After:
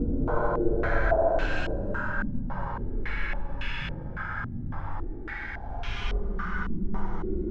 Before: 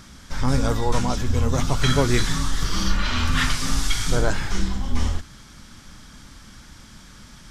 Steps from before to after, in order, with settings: de-hum 112.8 Hz, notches 5; Paulstretch 21×, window 0.05 s, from 4.23 s; step-sequenced low-pass 3.6 Hz 260–2800 Hz; trim -8 dB

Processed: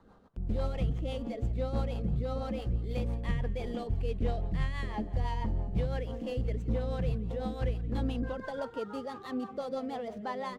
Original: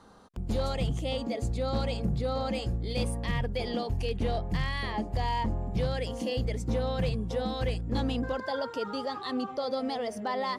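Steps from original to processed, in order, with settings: median filter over 9 samples; bass shelf 66 Hz +7 dB; rotary cabinet horn 6 Hz; treble shelf 6.5 kHz -11 dB; frequency-shifting echo 172 ms, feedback 44%, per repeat -40 Hz, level -19 dB; trim -2.5 dB

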